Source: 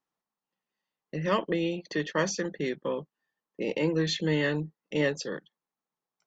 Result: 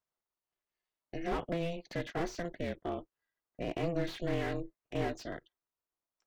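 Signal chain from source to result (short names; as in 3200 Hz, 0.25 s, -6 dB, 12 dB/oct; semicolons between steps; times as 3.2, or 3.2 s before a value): ring modulator 170 Hz; slew limiter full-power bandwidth 33 Hz; gain -3 dB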